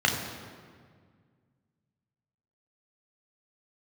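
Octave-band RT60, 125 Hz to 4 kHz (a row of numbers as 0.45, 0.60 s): 2.7, 2.4, 1.9, 1.7, 1.6, 1.2 s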